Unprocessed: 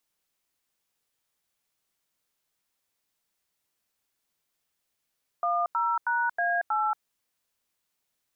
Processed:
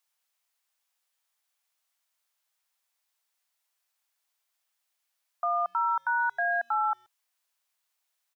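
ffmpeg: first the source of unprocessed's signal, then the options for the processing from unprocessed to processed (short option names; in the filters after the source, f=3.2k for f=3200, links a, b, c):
-f lavfi -i "aevalsrc='0.0501*clip(min(mod(t,0.318),0.23-mod(t,0.318))/0.002,0,1)*(eq(floor(t/0.318),0)*(sin(2*PI*697*mod(t,0.318))+sin(2*PI*1209*mod(t,0.318)))+eq(floor(t/0.318),1)*(sin(2*PI*941*mod(t,0.318))+sin(2*PI*1336*mod(t,0.318)))+eq(floor(t/0.318),2)*(sin(2*PI*941*mod(t,0.318))+sin(2*PI*1477*mod(t,0.318)))+eq(floor(t/0.318),3)*(sin(2*PI*697*mod(t,0.318))+sin(2*PI*1633*mod(t,0.318)))+eq(floor(t/0.318),4)*(sin(2*PI*852*mod(t,0.318))+sin(2*PI*1336*mod(t,0.318))))':d=1.59:s=44100"
-filter_complex "[0:a]highpass=f=640:w=0.5412,highpass=f=640:w=1.3066,asplit=2[a][b];[b]adelay=130,highpass=300,lowpass=3.4k,asoftclip=type=hard:threshold=-30dB,volume=-29dB[c];[a][c]amix=inputs=2:normalize=0"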